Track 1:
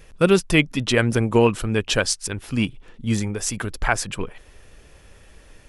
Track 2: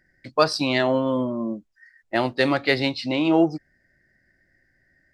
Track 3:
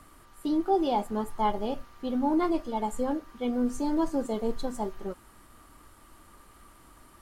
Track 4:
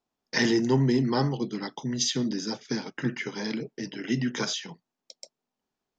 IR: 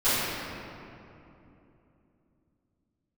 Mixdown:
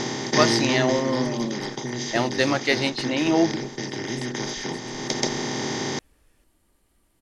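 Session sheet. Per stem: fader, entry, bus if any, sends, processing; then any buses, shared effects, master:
-16.5 dB, 0.75 s, no send, compression, threshold -28 dBFS, peak gain reduction 16 dB
-2.0 dB, 0.00 s, no send, treble shelf 2.3 kHz +3 dB
-18.5 dB, 0.35 s, no send, peaking EQ 1.2 kHz -13.5 dB 0.71 oct; compressor with a negative ratio -39 dBFS, ratio -1
+1.5 dB, 0.00 s, no send, spectral levelling over time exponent 0.2; peaking EQ 1.4 kHz -3 dB 0.39 oct; auto duck -12 dB, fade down 1.15 s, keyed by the second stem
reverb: none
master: none

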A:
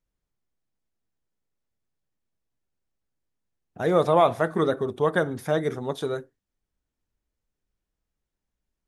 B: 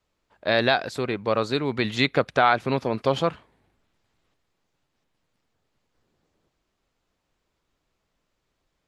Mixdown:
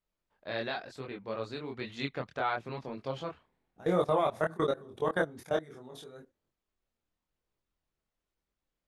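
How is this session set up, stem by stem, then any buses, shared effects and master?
-0.5 dB, 0.00 s, no send, level held to a coarse grid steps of 22 dB
-11.0 dB, 0.00 s, no send, treble shelf 8.5 kHz -6 dB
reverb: none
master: chorus voices 2, 1 Hz, delay 24 ms, depth 3 ms

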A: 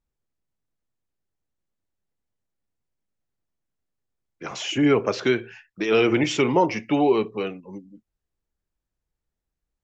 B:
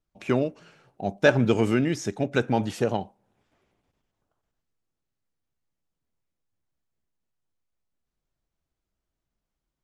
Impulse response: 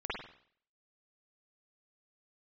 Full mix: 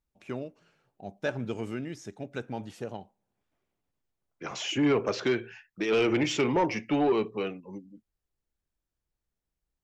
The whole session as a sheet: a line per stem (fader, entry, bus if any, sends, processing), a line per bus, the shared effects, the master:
-3.5 dB, 0.00 s, no send, saturation -14 dBFS, distortion -16 dB
-12.5 dB, 0.00 s, no send, none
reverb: none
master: none

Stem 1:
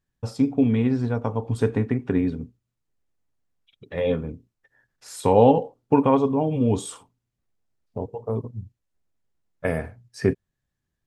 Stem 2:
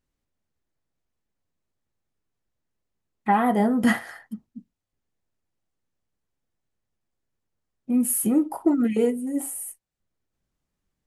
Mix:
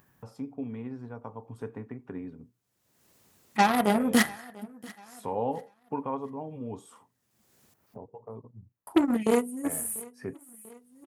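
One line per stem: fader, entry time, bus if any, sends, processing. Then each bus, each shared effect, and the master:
-16.5 dB, 0.00 s, no send, no echo send, ten-band graphic EQ 1 kHz +6 dB, 4 kHz -9 dB, 8 kHz -10 dB
-2.5 dB, 0.30 s, muted 7.74–8.87 s, no send, echo send -22.5 dB, Chebyshev shaper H 6 -13 dB, 7 -23 dB, 8 -16 dB, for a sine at -9 dBFS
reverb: none
echo: feedback delay 692 ms, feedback 29%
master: high-pass 110 Hz 12 dB/octave; treble shelf 5.1 kHz +9.5 dB; upward compressor, threshold -39 dBFS

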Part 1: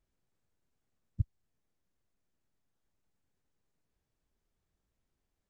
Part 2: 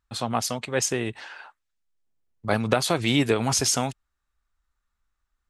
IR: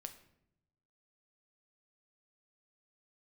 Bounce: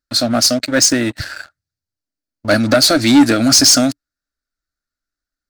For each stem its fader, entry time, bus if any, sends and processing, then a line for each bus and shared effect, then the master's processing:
-7.0 dB, 0.00 s, send -9.5 dB, none
-2.0 dB, 0.00 s, no send, FFT filter 120 Hz 0 dB, 170 Hz -7 dB, 290 Hz +14 dB, 420 Hz -11 dB, 610 Hz +8 dB, 970 Hz -21 dB, 1.4 kHz +8 dB, 3.1 kHz -5 dB, 4.5 kHz +14 dB, 7.4 kHz +5 dB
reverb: on, pre-delay 7 ms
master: bass shelf 110 Hz -5 dB; waveshaping leveller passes 3

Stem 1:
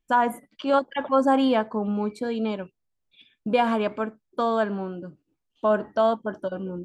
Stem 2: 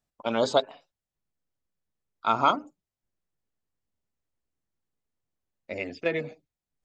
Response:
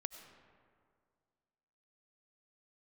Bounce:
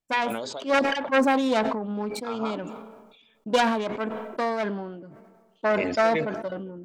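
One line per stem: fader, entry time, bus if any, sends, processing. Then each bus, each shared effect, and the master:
+1.0 dB, 0.00 s, send -22 dB, self-modulated delay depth 0.27 ms; upward expansion 1.5:1, over -40 dBFS
-7.0 dB, 0.00 s, send -21 dB, compression 2.5:1, threshold -26 dBFS, peak gain reduction 7.5 dB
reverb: on, RT60 2.1 s, pre-delay 55 ms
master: bass shelf 100 Hz -8 dB; tremolo 2.5 Hz, depth 37%; decay stretcher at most 42 dB/s

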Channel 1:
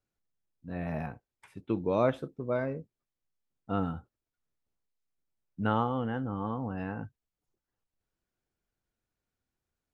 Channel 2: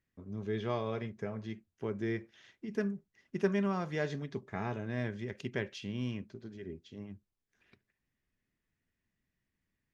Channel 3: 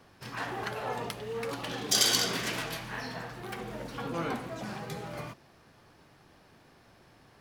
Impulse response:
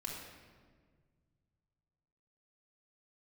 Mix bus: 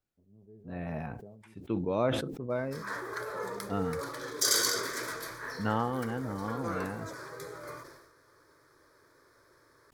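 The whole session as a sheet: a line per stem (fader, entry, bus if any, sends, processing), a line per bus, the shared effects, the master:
-2.5 dB, 0.00 s, no send, none
-18.5 dB, 0.00 s, no send, Chebyshev low-pass 720 Hz, order 3
+1.0 dB, 2.50 s, no send, bass shelf 140 Hz -12 dB; static phaser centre 760 Hz, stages 6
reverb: none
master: decay stretcher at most 51 dB/s

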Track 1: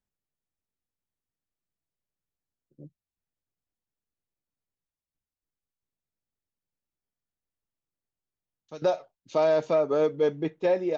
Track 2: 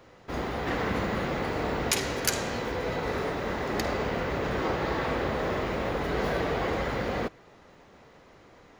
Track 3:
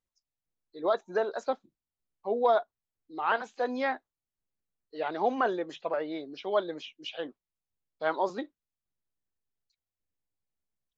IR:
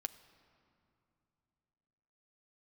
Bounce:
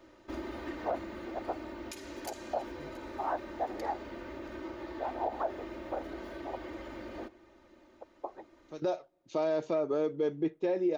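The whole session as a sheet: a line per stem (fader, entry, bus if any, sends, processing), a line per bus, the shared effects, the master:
-5.5 dB, 0.00 s, send -24 dB, no echo send, none
-10.0 dB, 0.00 s, send -10 dB, echo send -24 dB, comb 3.3 ms, depth 95%; compression, threshold -29 dBFS, peak gain reduction 11 dB; auto duck -7 dB, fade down 1.30 s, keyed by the third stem
+0.5 dB, 0.00 s, no send, no echo send, ladder band-pass 780 Hz, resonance 70%; trance gate ".xxxx.xxx.x" 71 bpm -60 dB; whisper effect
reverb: on, RT60 2.8 s, pre-delay 6 ms
echo: delay 677 ms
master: peaking EQ 340 Hz +9.5 dB 0.37 oct; peak limiter -22 dBFS, peak gain reduction 6.5 dB

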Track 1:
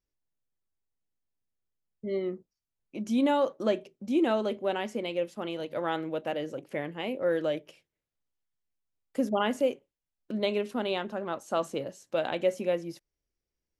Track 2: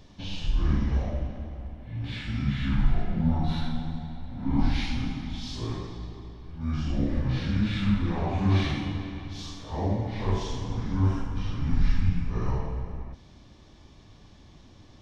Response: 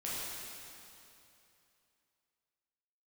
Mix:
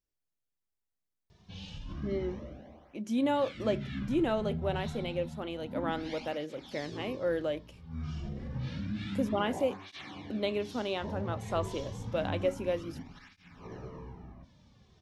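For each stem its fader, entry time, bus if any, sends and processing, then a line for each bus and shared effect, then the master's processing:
-3.5 dB, 0.00 s, no send, none
-6.0 dB, 1.30 s, no send, peak limiter -20 dBFS, peak gain reduction 9 dB; cancelling through-zero flanger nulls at 0.29 Hz, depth 3.8 ms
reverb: none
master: none

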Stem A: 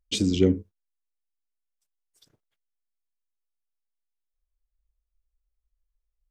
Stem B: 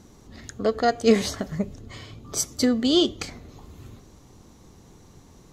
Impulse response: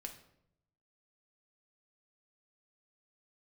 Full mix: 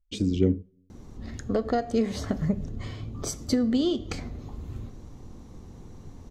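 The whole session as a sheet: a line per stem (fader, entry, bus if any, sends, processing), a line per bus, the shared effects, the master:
-6.5 dB, 0.00 s, send -20 dB, none
-3.0 dB, 0.90 s, send -3 dB, compression 12:1, threshold -24 dBFS, peak gain reduction 13 dB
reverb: on, RT60 0.75 s, pre-delay 4 ms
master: tilt EQ -2 dB/octave

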